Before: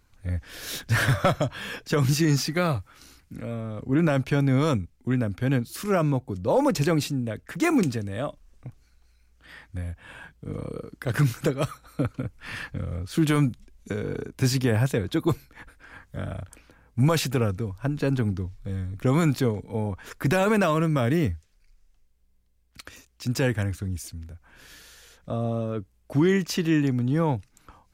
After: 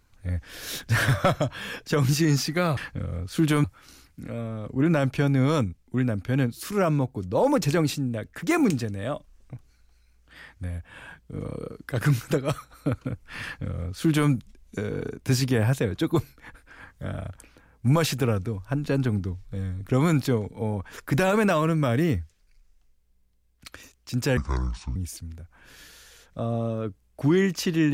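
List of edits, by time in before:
12.56–13.43 copy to 2.77
23.5–23.87 speed 63%

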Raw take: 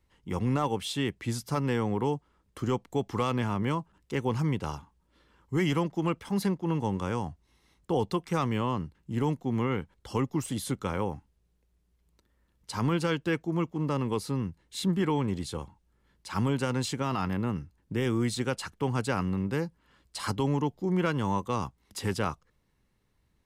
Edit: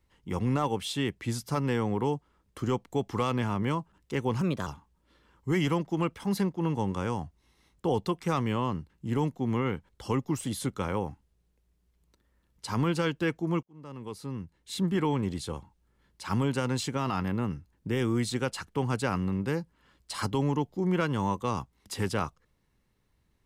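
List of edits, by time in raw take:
4.41–4.72 speed 120%
13.68–15.05 fade in

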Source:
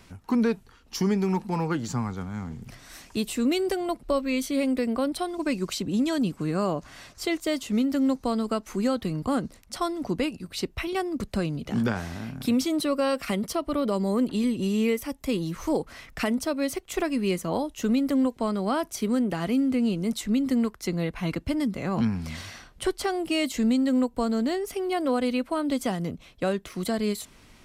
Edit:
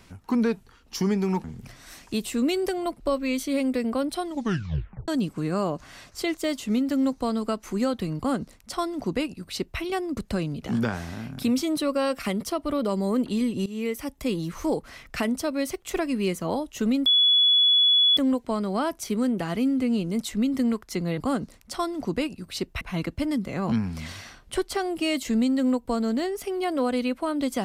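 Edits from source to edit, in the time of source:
1.44–2.47 cut
5.28 tape stop 0.83 s
9.2–10.83 copy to 21.1
14.69–15.05 fade in, from -17 dB
18.09 add tone 3400 Hz -15.5 dBFS 1.11 s

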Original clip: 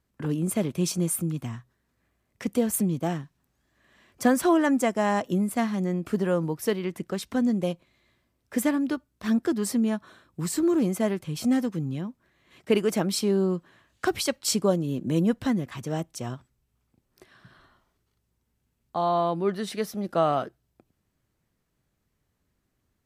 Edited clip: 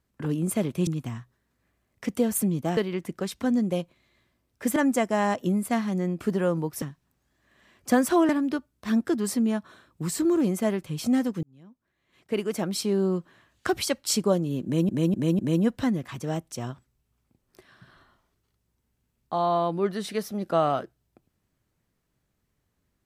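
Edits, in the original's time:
0.87–1.25 cut
3.15–4.62 swap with 6.68–8.67
11.81–13.53 fade in
15.02–15.27 loop, 4 plays

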